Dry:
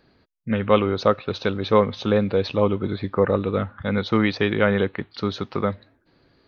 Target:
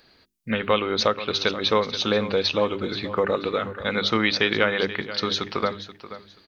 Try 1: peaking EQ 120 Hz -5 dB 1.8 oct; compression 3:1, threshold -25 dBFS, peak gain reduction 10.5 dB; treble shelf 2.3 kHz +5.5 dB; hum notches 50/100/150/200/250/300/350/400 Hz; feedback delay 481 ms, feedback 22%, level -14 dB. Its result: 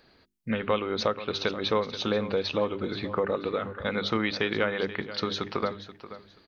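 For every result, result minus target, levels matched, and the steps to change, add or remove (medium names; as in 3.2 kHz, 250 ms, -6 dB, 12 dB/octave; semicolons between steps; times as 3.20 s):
compression: peak gain reduction +4.5 dB; 4 kHz band -2.5 dB
change: compression 3:1, threshold -18.5 dBFS, peak gain reduction 6.5 dB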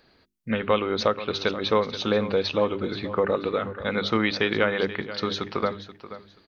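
4 kHz band -4.0 dB
change: treble shelf 2.3 kHz +13.5 dB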